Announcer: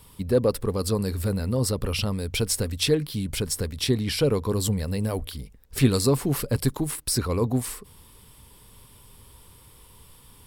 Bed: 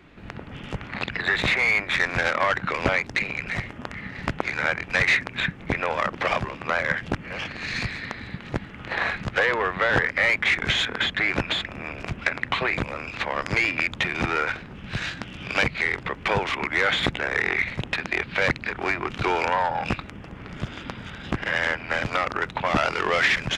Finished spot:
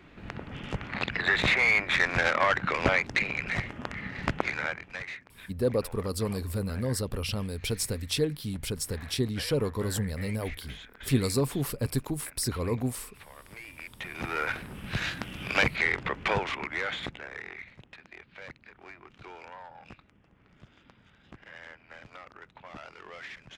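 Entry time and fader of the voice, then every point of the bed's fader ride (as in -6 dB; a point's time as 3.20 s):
5.30 s, -5.5 dB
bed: 4.45 s -2 dB
5.23 s -23.5 dB
13.64 s -23.5 dB
14.58 s -2 dB
16.16 s -2 dB
17.87 s -23 dB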